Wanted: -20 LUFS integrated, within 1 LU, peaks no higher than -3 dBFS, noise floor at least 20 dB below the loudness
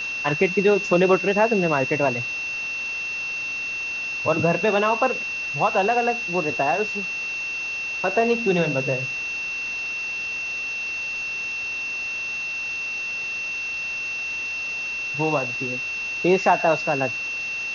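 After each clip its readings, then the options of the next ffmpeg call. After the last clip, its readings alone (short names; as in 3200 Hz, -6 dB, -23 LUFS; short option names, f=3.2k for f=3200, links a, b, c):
steady tone 2700 Hz; tone level -26 dBFS; noise floor -29 dBFS; noise floor target -43 dBFS; loudness -23.0 LUFS; peak -6.0 dBFS; loudness target -20.0 LUFS
-> -af "bandreject=f=2.7k:w=30"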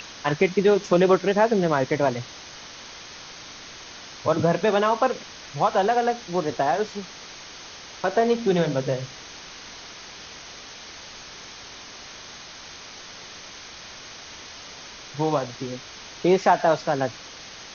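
steady tone none; noise floor -42 dBFS; noise floor target -43 dBFS
-> -af "afftdn=nr=6:nf=-42"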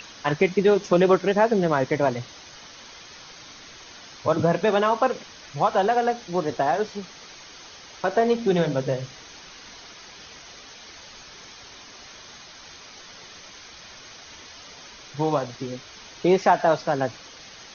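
noise floor -45 dBFS; loudness -23.0 LUFS; peak -7.0 dBFS; loudness target -20.0 LUFS
-> -af "volume=3dB"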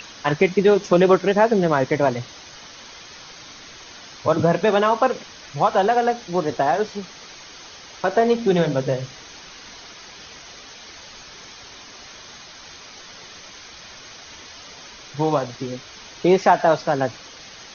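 loudness -20.0 LUFS; peak -4.0 dBFS; noise floor -42 dBFS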